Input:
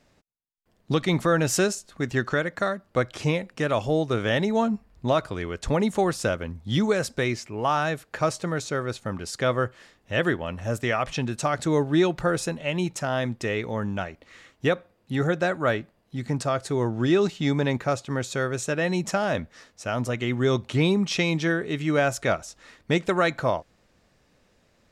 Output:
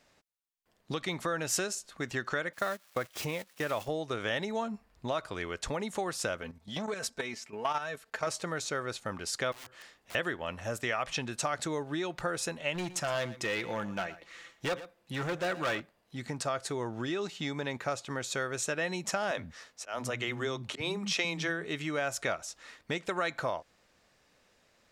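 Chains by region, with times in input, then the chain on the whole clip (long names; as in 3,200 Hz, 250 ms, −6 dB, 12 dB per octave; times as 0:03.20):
0:02.53–0:03.88: spike at every zero crossing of −24.5 dBFS + noise gate −32 dBFS, range −17 dB + high-shelf EQ 4,700 Hz −10 dB
0:06.41–0:08.27: comb filter 4.5 ms, depth 51% + output level in coarse steps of 11 dB + saturating transformer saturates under 670 Hz
0:09.52–0:10.15: downward compressor 10 to 1, threshold −36 dBFS + wrap-around overflow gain 40 dB
0:12.74–0:15.80: comb filter 5.9 ms, depth 43% + hard clipping −22.5 dBFS + single-tap delay 116 ms −17 dB
0:19.31–0:21.64: volume swells 160 ms + multiband delay without the direct sound highs, lows 60 ms, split 240 Hz
whole clip: downward compressor, threshold −25 dBFS; low-shelf EQ 400 Hz −11 dB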